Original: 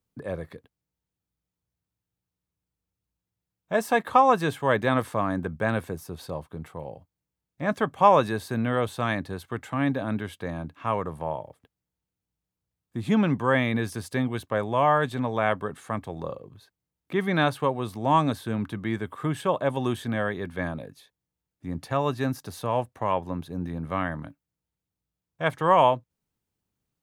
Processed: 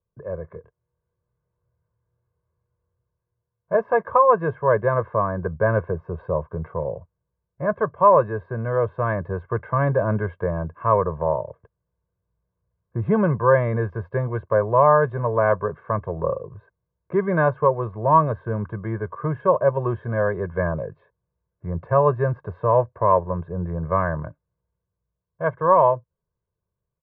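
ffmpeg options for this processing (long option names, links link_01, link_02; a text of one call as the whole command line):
ffmpeg -i in.wav -filter_complex "[0:a]asplit=3[link_01][link_02][link_03];[link_01]afade=type=out:start_time=0.53:duration=0.02[link_04];[link_02]asplit=2[link_05][link_06];[link_06]adelay=25,volume=-3dB[link_07];[link_05][link_07]amix=inputs=2:normalize=0,afade=type=in:start_time=0.53:duration=0.02,afade=type=out:start_time=3.75:duration=0.02[link_08];[link_03]afade=type=in:start_time=3.75:duration=0.02[link_09];[link_04][link_08][link_09]amix=inputs=3:normalize=0,lowpass=frequency=1400:width=0.5412,lowpass=frequency=1400:width=1.3066,aecho=1:1:1.9:0.94,dynaudnorm=framelen=320:gausssize=5:maxgain=11.5dB,volume=-3dB" out.wav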